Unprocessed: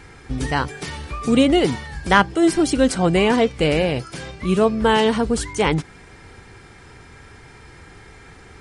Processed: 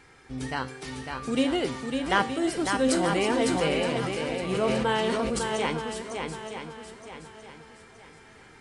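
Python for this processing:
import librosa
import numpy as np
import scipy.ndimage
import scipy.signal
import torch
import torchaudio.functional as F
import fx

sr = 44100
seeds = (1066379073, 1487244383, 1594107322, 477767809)

y = fx.low_shelf(x, sr, hz=170.0, db=-10.0)
y = fx.comb_fb(y, sr, f0_hz=130.0, decay_s=0.6, harmonics='all', damping=0.0, mix_pct=70)
y = fx.echo_swing(y, sr, ms=920, ratio=1.5, feedback_pct=33, wet_db=-5.0)
y = fx.sustainer(y, sr, db_per_s=22.0, at=(2.84, 5.39))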